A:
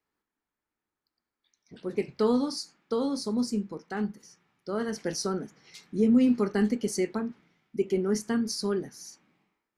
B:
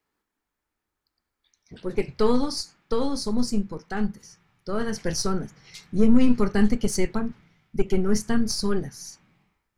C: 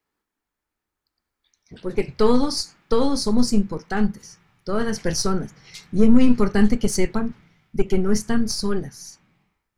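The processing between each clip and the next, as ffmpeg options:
-af "aeval=exprs='0.237*(cos(1*acos(clip(val(0)/0.237,-1,1)))-cos(1*PI/2))+0.00944*(cos(4*acos(clip(val(0)/0.237,-1,1)))-cos(4*PI/2))+0.00376*(cos(8*acos(clip(val(0)/0.237,-1,1)))-cos(8*PI/2))':c=same,asubboost=boost=8:cutoff=100,volume=1.78"
-af "dynaudnorm=f=910:g=5:m=3.76,volume=0.891"

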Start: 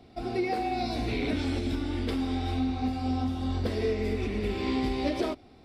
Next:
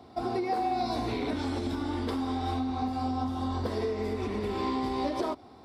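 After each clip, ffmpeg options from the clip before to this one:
-af "highpass=83,acompressor=threshold=0.0316:ratio=6,equalizer=f=160:t=o:w=0.67:g=-4,equalizer=f=1000:t=o:w=0.67:g=10,equalizer=f=2500:t=o:w=0.67:g=-7,volume=1.33"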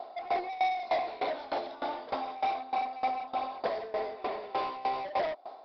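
-af "highpass=f=640:t=q:w=5,aresample=11025,asoftclip=type=tanh:threshold=0.0422,aresample=44100,aeval=exprs='val(0)*pow(10,-19*if(lt(mod(3.3*n/s,1),2*abs(3.3)/1000),1-mod(3.3*n/s,1)/(2*abs(3.3)/1000),(mod(3.3*n/s,1)-2*abs(3.3)/1000)/(1-2*abs(3.3)/1000))/20)':c=same,volume=1.78"

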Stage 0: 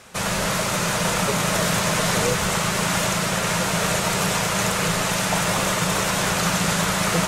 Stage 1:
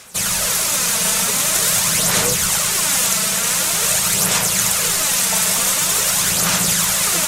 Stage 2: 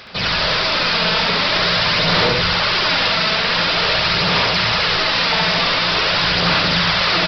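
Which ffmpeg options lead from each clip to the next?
-af "aphaser=in_gain=1:out_gain=1:delay=4.6:decay=0.43:speed=0.46:type=sinusoidal,crystalizer=i=5.5:c=0,volume=0.501"
-af "aresample=11025,asoftclip=type=tanh:threshold=0.133,aresample=44100,aecho=1:1:69.97|227.4:0.891|0.251,volume=1.88"

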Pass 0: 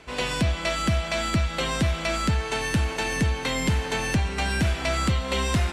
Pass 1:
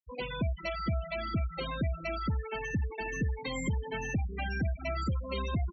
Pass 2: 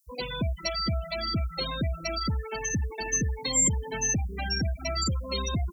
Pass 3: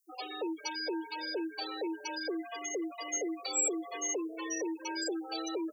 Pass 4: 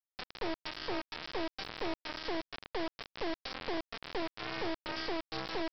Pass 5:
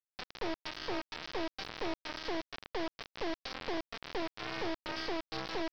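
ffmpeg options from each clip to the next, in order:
-filter_complex "[0:a]asplit=2[s0][s1];[s1]asoftclip=type=hard:threshold=0.0266,volume=0.447[s2];[s0][s2]amix=inputs=2:normalize=0,afftfilt=real='re*gte(hypot(re,im),0.126)':imag='im*gte(hypot(re,im),0.126)':win_size=1024:overlap=0.75,volume=0.376"
-af "aexciter=amount=9.2:drive=7.2:freq=4400,volume=1.33"
-af "afreqshift=260,volume=0.422"
-af "aemphasis=mode=reproduction:type=50kf,aresample=11025,acrusher=bits=3:dc=4:mix=0:aa=0.000001,aresample=44100,volume=1.12"
-af "aeval=exprs='sgn(val(0))*max(abs(val(0))-0.00126,0)':c=same"

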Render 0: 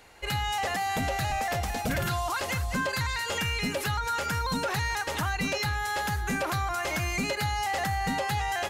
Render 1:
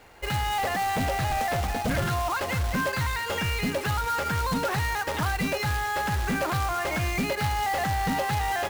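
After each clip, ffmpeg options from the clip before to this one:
-af "aemphasis=mode=reproduction:type=75fm,acrusher=bits=2:mode=log:mix=0:aa=0.000001,volume=1.33"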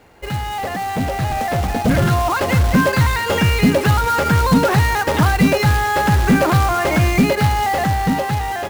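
-af "dynaudnorm=f=510:g=7:m=2.66,equalizer=f=200:w=0.4:g=7.5"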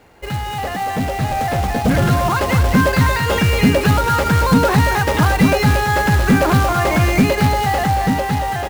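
-af "aecho=1:1:229:0.422"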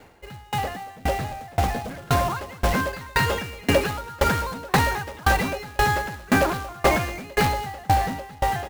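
-filter_complex "[0:a]acrossover=split=390|2200[s0][s1][s2];[s0]asoftclip=type=hard:threshold=0.1[s3];[s3][s1][s2]amix=inputs=3:normalize=0,aeval=exprs='val(0)*pow(10,-29*if(lt(mod(1.9*n/s,1),2*abs(1.9)/1000),1-mod(1.9*n/s,1)/(2*abs(1.9)/1000),(mod(1.9*n/s,1)-2*abs(1.9)/1000)/(1-2*abs(1.9)/1000))/20)':c=same,volume=1.26"

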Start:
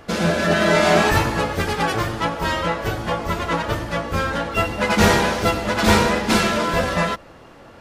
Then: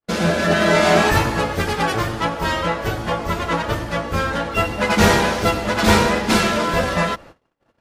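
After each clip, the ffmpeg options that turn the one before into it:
-af "agate=range=0.00178:threshold=0.01:ratio=16:detection=peak,volume=1.12"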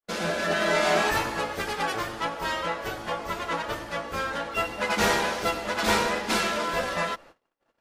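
-af "equalizer=f=88:w=0.43:g=-12.5,volume=0.473"

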